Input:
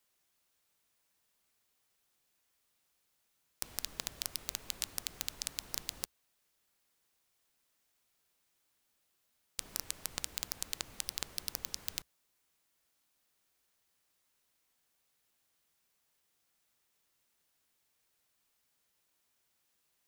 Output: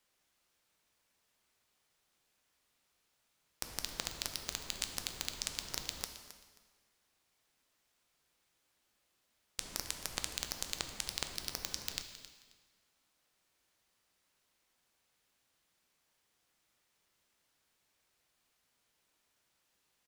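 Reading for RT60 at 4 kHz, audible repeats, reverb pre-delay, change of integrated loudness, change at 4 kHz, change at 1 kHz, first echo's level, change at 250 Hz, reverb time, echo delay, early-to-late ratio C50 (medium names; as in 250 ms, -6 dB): 1.3 s, 2, 5 ms, 0.0 dB, +2.0 dB, +3.5 dB, -15.0 dB, +3.5 dB, 1.4 s, 267 ms, 8.0 dB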